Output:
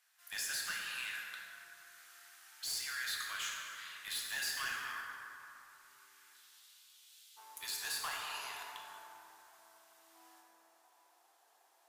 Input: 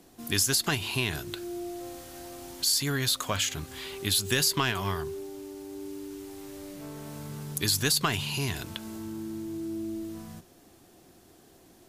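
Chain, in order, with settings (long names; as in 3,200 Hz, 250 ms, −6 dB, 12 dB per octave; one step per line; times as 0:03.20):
four-pole ladder high-pass 1,300 Hz, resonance 50%, from 0:06.33 2,900 Hz, from 0:07.36 750 Hz
hard clipping −31.5 dBFS, distortion −11 dB
dense smooth reverb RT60 3 s, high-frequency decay 0.45×, DRR −2.5 dB
level −5 dB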